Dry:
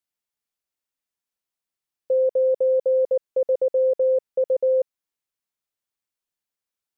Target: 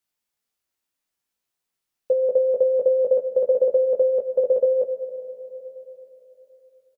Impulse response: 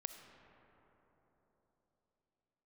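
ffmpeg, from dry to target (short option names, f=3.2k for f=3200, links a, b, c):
-filter_complex "[0:a]aecho=1:1:18|30:0.708|0.282,asplit=2[a][b];[1:a]atrim=start_sample=2205,asetrate=48510,aresample=44100[c];[b][c]afir=irnorm=-1:irlink=0,volume=6.5dB[d];[a][d]amix=inputs=2:normalize=0,volume=-3.5dB"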